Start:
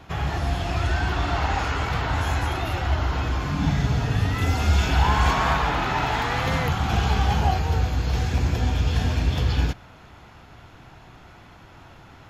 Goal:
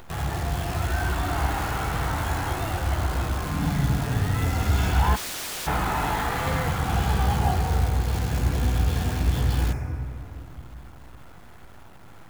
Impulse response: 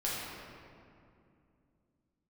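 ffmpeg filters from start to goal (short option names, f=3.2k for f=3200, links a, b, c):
-filter_complex "[0:a]acompressor=mode=upward:threshold=-37dB:ratio=2.5,acrusher=bits=6:dc=4:mix=0:aa=0.000001,asplit=2[a][b];[b]asuperstop=centerf=3600:order=8:qfactor=1.3[c];[1:a]atrim=start_sample=2205[d];[c][d]afir=irnorm=-1:irlink=0,volume=-7.5dB[e];[a][e]amix=inputs=2:normalize=0,asplit=3[f][g][h];[f]afade=t=out:st=5.15:d=0.02[i];[g]aeval=exprs='(mod(13.3*val(0)+1,2)-1)/13.3':c=same,afade=t=in:st=5.15:d=0.02,afade=t=out:st=5.66:d=0.02[j];[h]afade=t=in:st=5.66:d=0.02[k];[i][j][k]amix=inputs=3:normalize=0,volume=-5.5dB"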